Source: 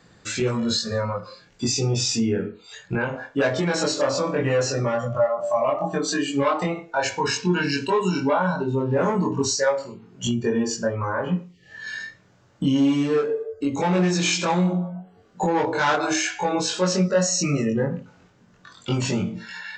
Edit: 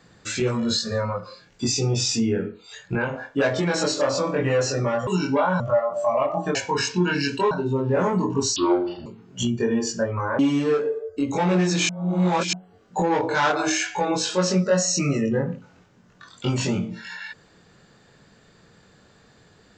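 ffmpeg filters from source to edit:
-filter_complex "[0:a]asplit=10[a][b][c][d][e][f][g][h][i][j];[a]atrim=end=5.072[k];[b]atrim=start=7.998:end=8.532[l];[c]atrim=start=5.068:end=6.022[m];[d]atrim=start=7.038:end=8.002[n];[e]atrim=start=8.528:end=9.584[o];[f]atrim=start=9.58:end=9.9,asetpts=PTS-STARTPTS,asetrate=28224,aresample=44100[p];[g]atrim=start=9.896:end=11.232[q];[h]atrim=start=12.828:end=14.332[r];[i]atrim=start=14.328:end=14.972,asetpts=PTS-STARTPTS,areverse[s];[j]atrim=start=14.968[t];[k][l]acrossfade=d=0.004:c1=hsin:c2=hsin[u];[u][m]acrossfade=d=0.004:c1=hsin:c2=hsin[v];[v][n]acrossfade=d=0.004:c1=hsin:c2=hsin[w];[w][o]acrossfade=d=0.004:c1=hsin:c2=hsin[x];[x][p]acrossfade=d=0.004:c1=hsin:c2=hsin[y];[y][q]acrossfade=d=0.004:c1=hsin:c2=hsin[z];[z][r]acrossfade=d=0.004:c1=hsin:c2=hsin[aa];[aa][s]acrossfade=d=0.004:c1=hsin:c2=hsin[ab];[ab][t]acrossfade=d=0.004:c1=hsin:c2=hsin"

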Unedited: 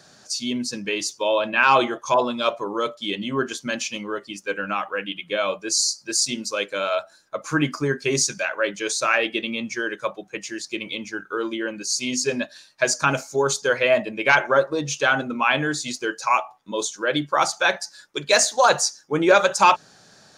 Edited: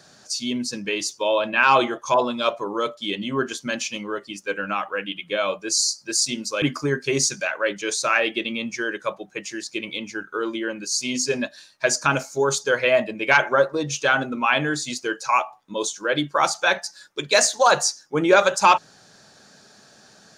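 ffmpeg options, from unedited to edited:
-filter_complex "[0:a]asplit=2[a][b];[a]atrim=end=6.622[c];[b]atrim=start=7.598[d];[c][d]acrossfade=d=0.004:c1=hsin:c2=hsin"

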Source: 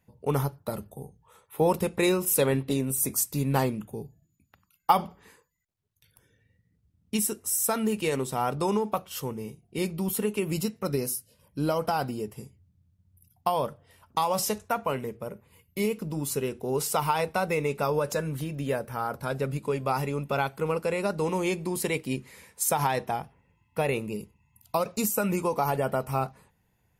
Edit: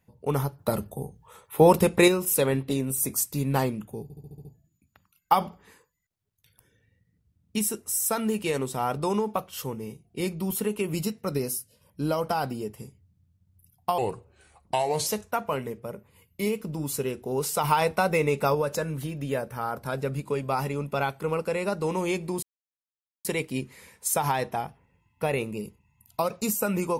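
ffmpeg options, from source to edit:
-filter_complex "[0:a]asplit=14[a][b][c][d][e][f][g][h][i][j][k][l][m][n];[a]atrim=end=0.592[o];[b]atrim=start=0.588:end=2.082,asetpts=PTS-STARTPTS,volume=6.5dB[p];[c]atrim=start=2.078:end=4.102[q];[d]atrim=start=4.028:end=4.102[r];[e]atrim=start=4.028:end=4.102[s];[f]atrim=start=4.028:end=4.102[t];[g]atrim=start=4.028:end=4.102[u];[h]atrim=start=4.028:end=4.102[v];[i]atrim=start=4.028:end=13.564[w];[j]atrim=start=13.56:end=14.44,asetpts=PTS-STARTPTS,asetrate=35721,aresample=44100,atrim=end_sample=47911,asetpts=PTS-STARTPTS[x];[k]atrim=start=14.436:end=17.012[y];[l]atrim=start=17.008:end=17.922,asetpts=PTS-STARTPTS,volume=3.5dB[z];[m]atrim=start=17.918:end=21.8,asetpts=PTS-STARTPTS,afade=t=out:st=3.878:d=0.004:c=hsin,apad=pad_dur=0.82[aa];[n]atrim=start=21.8,asetpts=PTS-STARTPTS,afade=t=in:d=0.004:c=hsin[ab];[o][p]acrossfade=d=0.004:c1=hsin:c2=hsin[ac];[ac][q]acrossfade=d=0.004:c1=hsin:c2=hsin[ad];[ad][r]acrossfade=d=0.004:c1=hsin:c2=hsin[ae];[ae][s]acrossfade=d=0.004:c1=hsin:c2=hsin[af];[af][t]acrossfade=d=0.004:c1=hsin:c2=hsin[ag];[ag][u]acrossfade=d=0.004:c1=hsin:c2=hsin[ah];[ah][v]acrossfade=d=0.004:c1=hsin:c2=hsin[ai];[ai][w]acrossfade=d=0.004:c1=hsin:c2=hsin[aj];[aj][x]acrossfade=d=0.004:c1=hsin:c2=hsin[ak];[ak][y]acrossfade=d=0.004:c1=hsin:c2=hsin[al];[al][z]acrossfade=d=0.004:c1=hsin:c2=hsin[am];[aa][ab]concat=n=2:v=0:a=1[an];[am][an]acrossfade=d=0.004:c1=hsin:c2=hsin"

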